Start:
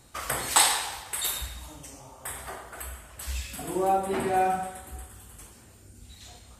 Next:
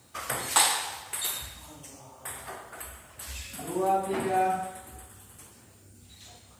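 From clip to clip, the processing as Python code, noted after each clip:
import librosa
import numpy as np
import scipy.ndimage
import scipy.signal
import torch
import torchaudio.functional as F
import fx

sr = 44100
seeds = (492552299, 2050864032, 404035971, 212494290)

y = scipy.signal.sosfilt(scipy.signal.butter(4, 78.0, 'highpass', fs=sr, output='sos'), x)
y = fx.dmg_noise_colour(y, sr, seeds[0], colour='violet', level_db=-70.0)
y = F.gain(torch.from_numpy(y), -1.5).numpy()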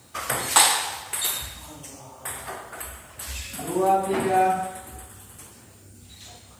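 y = fx.end_taper(x, sr, db_per_s=140.0)
y = F.gain(torch.from_numpy(y), 5.5).numpy()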